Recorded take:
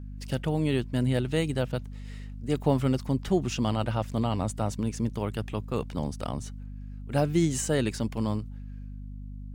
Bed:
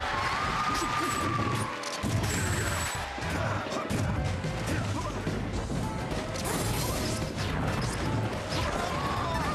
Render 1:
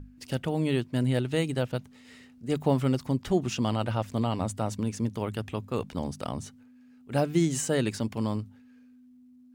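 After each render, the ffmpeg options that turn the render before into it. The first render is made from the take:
-af "bandreject=f=50:t=h:w=6,bandreject=f=100:t=h:w=6,bandreject=f=150:t=h:w=6,bandreject=f=200:t=h:w=6"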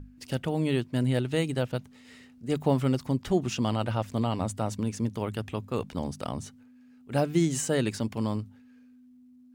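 -af anull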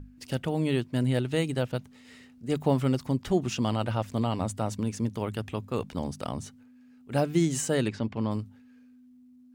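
-filter_complex "[0:a]asplit=3[s0][s1][s2];[s0]afade=t=out:st=7.87:d=0.02[s3];[s1]lowpass=3300,afade=t=in:st=7.87:d=0.02,afade=t=out:st=8.3:d=0.02[s4];[s2]afade=t=in:st=8.3:d=0.02[s5];[s3][s4][s5]amix=inputs=3:normalize=0"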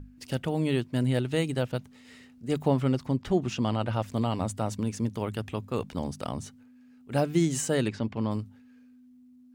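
-filter_complex "[0:a]asettb=1/sr,asplit=3[s0][s1][s2];[s0]atrim=end=2.684[s3];[s1]atrim=start=2.68:end=3.93,asetpts=PTS-STARTPTS,afade=t=in:d=0.004:c=qsin,afade=t=out:st=1.246:d=0.004:c=qsin,highshelf=f=6700:g=-10[s4];[s2]atrim=start=3.926[s5];[s3][s4]acrossfade=d=0.004:c1=hsin:c2=qsin[s6];[s6][s5]acrossfade=d=0.004:c1=qsin:c2=hsin"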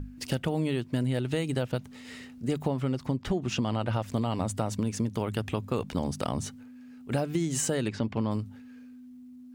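-filter_complex "[0:a]asplit=2[s0][s1];[s1]alimiter=limit=0.0891:level=0:latency=1:release=235,volume=1.26[s2];[s0][s2]amix=inputs=2:normalize=0,acompressor=threshold=0.0562:ratio=6"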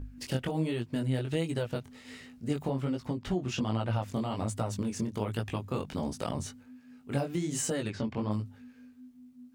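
-af "flanger=delay=17:depth=6:speed=1.3"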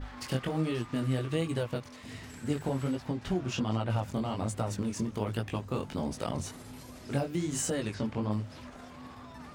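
-filter_complex "[1:a]volume=0.112[s0];[0:a][s0]amix=inputs=2:normalize=0"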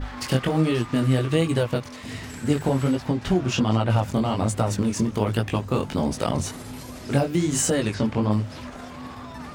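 -af "volume=2.99"

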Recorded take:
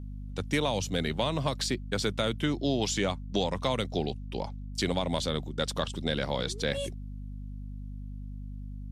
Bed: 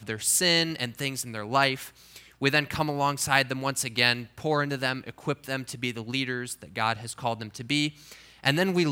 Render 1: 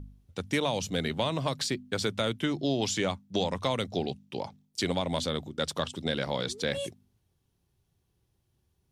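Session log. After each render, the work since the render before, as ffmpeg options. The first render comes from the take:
-af "bandreject=f=50:t=h:w=4,bandreject=f=100:t=h:w=4,bandreject=f=150:t=h:w=4,bandreject=f=200:t=h:w=4,bandreject=f=250:t=h:w=4"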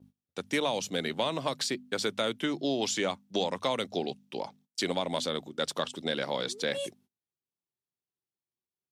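-af "highpass=230,agate=range=0.0891:threshold=0.00126:ratio=16:detection=peak"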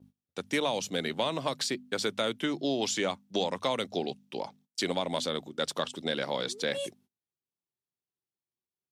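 -af anull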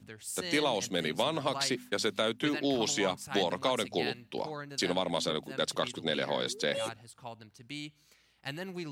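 -filter_complex "[1:a]volume=0.168[s0];[0:a][s0]amix=inputs=2:normalize=0"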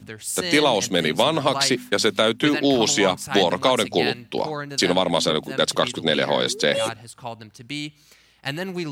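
-af "volume=3.55"

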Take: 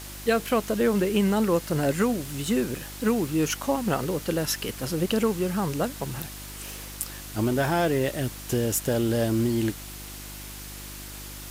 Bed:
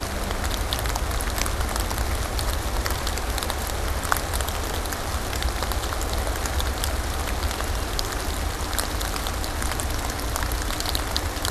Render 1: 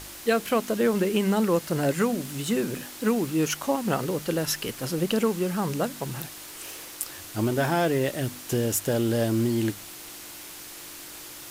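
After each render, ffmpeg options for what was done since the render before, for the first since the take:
-af "bandreject=f=50:t=h:w=4,bandreject=f=100:t=h:w=4,bandreject=f=150:t=h:w=4,bandreject=f=200:t=h:w=4,bandreject=f=250:t=h:w=4"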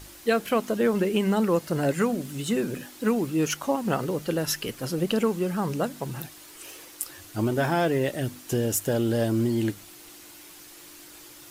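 -af "afftdn=nr=7:nf=-42"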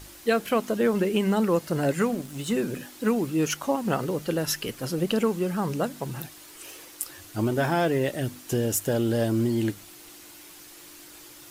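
-filter_complex "[0:a]asettb=1/sr,asplit=3[s0][s1][s2];[s0]atrim=end=2.034[s3];[s1]atrim=start=2.03:end=2.54,asetpts=PTS-STARTPTS,afade=t=in:d=0.004:c=qsin,afade=t=out:st=0.506:d=0.004:c=qsin,aeval=exprs='sgn(val(0))*max(abs(val(0))-0.00562,0)':c=same[s4];[s2]atrim=start=2.536[s5];[s3][s4]acrossfade=d=0.004:c1=hsin:c2=qsin[s6];[s6][s5]acrossfade=d=0.004:c1=qsin:c2=hsin"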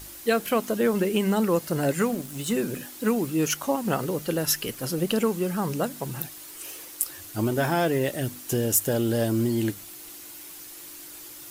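-af "highshelf=f=8600:g=9.5"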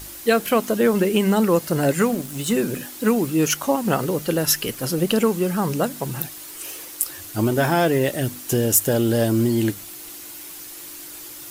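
-af "volume=1.78,alimiter=limit=0.891:level=0:latency=1"

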